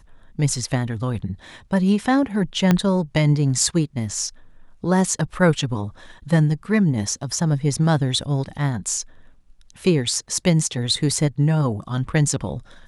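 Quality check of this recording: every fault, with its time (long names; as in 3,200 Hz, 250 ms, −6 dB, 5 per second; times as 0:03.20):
0:02.71: click −4 dBFS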